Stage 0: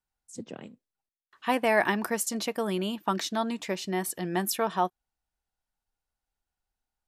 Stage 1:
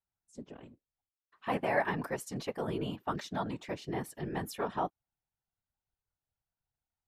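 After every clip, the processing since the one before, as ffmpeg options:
-af "highshelf=f=4k:g=-11,afftfilt=real='hypot(re,im)*cos(2*PI*random(0))':imag='hypot(re,im)*sin(2*PI*random(1))':win_size=512:overlap=0.75"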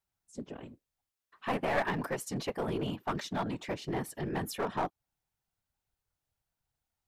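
-filter_complex "[0:a]asplit=2[a][b];[b]acompressor=threshold=-40dB:ratio=6,volume=-2dB[c];[a][c]amix=inputs=2:normalize=0,aeval=exprs='clip(val(0),-1,0.0316)':c=same"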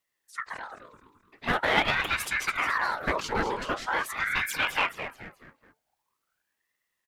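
-filter_complex "[0:a]asplit=5[a][b][c][d][e];[b]adelay=214,afreqshift=55,volume=-10dB[f];[c]adelay=428,afreqshift=110,volume=-18dB[g];[d]adelay=642,afreqshift=165,volume=-25.9dB[h];[e]adelay=856,afreqshift=220,volume=-33.9dB[i];[a][f][g][h][i]amix=inputs=5:normalize=0,aeval=exprs='val(0)*sin(2*PI*1300*n/s+1300*0.5/0.44*sin(2*PI*0.44*n/s))':c=same,volume=8.5dB"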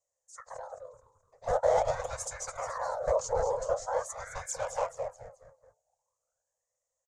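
-af "firequalizer=gain_entry='entry(120,0);entry(210,-25);entry(350,-23);entry(510,12);entry(840,-1);entry(1400,-13);entry(2700,-27);entry(6700,9);entry(13000,-24)':delay=0.05:min_phase=1,volume=-1.5dB"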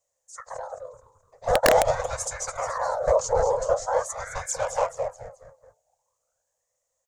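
-af "aeval=exprs='(mod(6.31*val(0)+1,2)-1)/6.31':c=same,volume=7dB"

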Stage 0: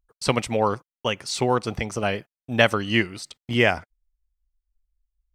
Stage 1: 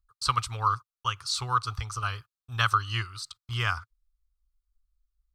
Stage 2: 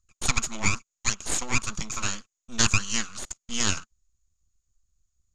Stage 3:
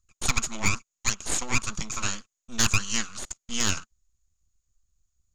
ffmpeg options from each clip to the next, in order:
-af "firequalizer=gain_entry='entry(110,0);entry(190,-28);entry(410,-21);entry(600,-26);entry(1200,8);entry(1900,-14);entry(4100,2);entry(5800,-3)':delay=0.05:min_phase=1"
-af "aeval=exprs='abs(val(0))':c=same,lowpass=f=6.8k:t=q:w=15,volume=2.5dB"
-af "asoftclip=type=hard:threshold=-11dB"

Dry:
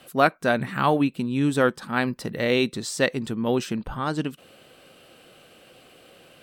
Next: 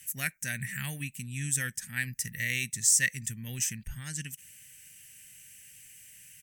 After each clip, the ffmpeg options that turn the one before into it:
-af "firequalizer=gain_entry='entry(110,0);entry(330,-27);entry(1200,-27);entry(1800,4);entry(4000,-10);entry(6100,15)':delay=0.05:min_phase=1,volume=-3dB"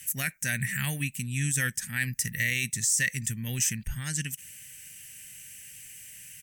-af "alimiter=limit=-22dB:level=0:latency=1:release=19,volume=6dB"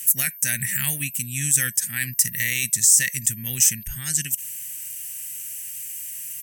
-af "aeval=exprs='val(0)+0.00251*sin(2*PI*13000*n/s)':c=same,crystalizer=i=3:c=0,volume=-1dB"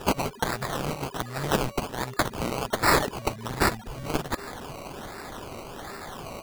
-af "acrusher=samples=20:mix=1:aa=0.000001:lfo=1:lforange=12:lforate=1.3,volume=-5dB"

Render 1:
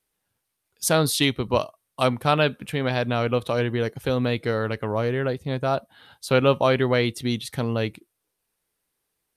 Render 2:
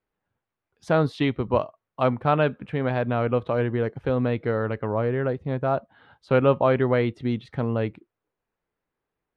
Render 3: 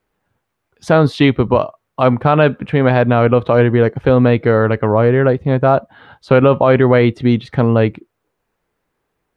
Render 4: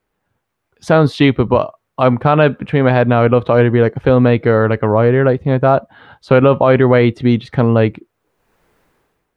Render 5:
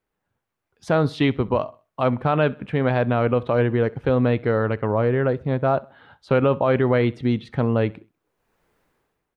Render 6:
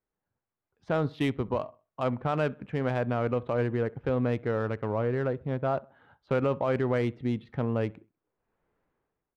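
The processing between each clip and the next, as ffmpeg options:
-af "lowpass=1.7k"
-af "alimiter=level_in=13.5dB:limit=-1dB:release=50:level=0:latency=1,volume=-1dB"
-af "dynaudnorm=f=140:g=7:m=14.5dB,volume=-1dB"
-af "aecho=1:1:65|130|195:0.0708|0.0276|0.0108,volume=-8.5dB"
-af "adynamicsmooth=sensitivity=2.5:basefreq=2.5k,volume=-8dB"

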